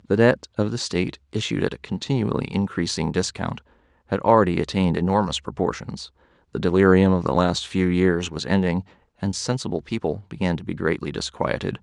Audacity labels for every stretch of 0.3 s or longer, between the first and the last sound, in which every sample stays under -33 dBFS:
3.580000	4.120000	silence
6.060000	6.550000	silence
8.810000	9.230000	silence